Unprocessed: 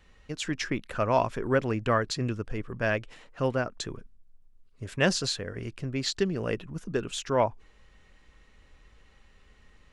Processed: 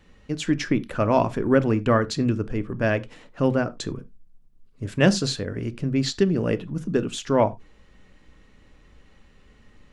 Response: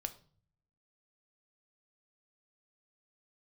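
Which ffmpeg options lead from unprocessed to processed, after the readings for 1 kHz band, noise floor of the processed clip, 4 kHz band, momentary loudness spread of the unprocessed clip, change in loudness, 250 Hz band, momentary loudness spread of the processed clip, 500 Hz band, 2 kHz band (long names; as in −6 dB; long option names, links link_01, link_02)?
+3.0 dB, −55 dBFS, +2.0 dB, 12 LU, +5.5 dB, +9.5 dB, 10 LU, +5.0 dB, +2.0 dB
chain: -filter_complex "[0:a]asplit=2[link_01][link_02];[link_02]equalizer=frequency=220:width=0.48:gain=12[link_03];[1:a]atrim=start_sample=2205,atrim=end_sample=4410[link_04];[link_03][link_04]afir=irnorm=-1:irlink=0,volume=2dB[link_05];[link_01][link_05]amix=inputs=2:normalize=0,volume=-4.5dB"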